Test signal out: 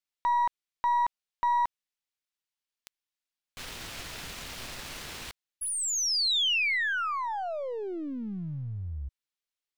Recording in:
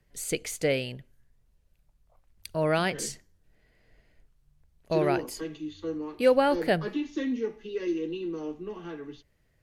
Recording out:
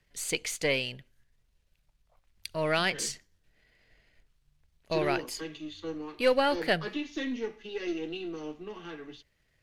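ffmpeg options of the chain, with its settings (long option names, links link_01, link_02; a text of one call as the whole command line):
ffmpeg -i in.wav -af "aeval=exprs='if(lt(val(0),0),0.708*val(0),val(0))':channel_layout=same,equalizer=frequency=3300:width=0.43:gain=9.5,volume=-3.5dB" out.wav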